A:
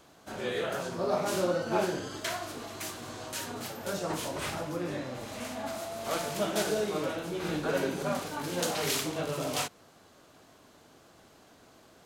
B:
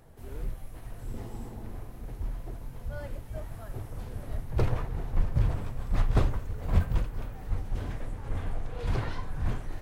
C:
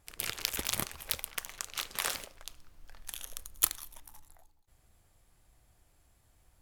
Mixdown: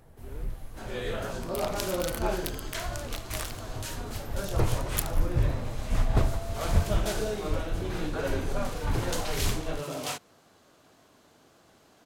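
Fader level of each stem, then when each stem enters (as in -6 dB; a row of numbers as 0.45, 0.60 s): -2.0, 0.0, -4.5 dB; 0.50, 0.00, 1.35 s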